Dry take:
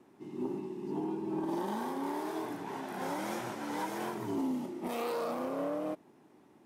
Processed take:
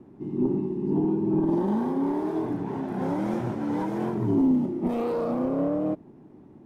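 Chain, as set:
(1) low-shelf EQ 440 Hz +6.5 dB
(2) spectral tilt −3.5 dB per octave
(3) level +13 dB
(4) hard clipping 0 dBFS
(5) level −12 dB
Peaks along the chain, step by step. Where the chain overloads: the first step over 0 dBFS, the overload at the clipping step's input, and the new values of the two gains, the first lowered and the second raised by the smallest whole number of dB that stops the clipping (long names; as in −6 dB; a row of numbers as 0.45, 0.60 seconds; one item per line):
−21.5, −14.5, −1.5, −1.5, −13.5 dBFS
no step passes full scale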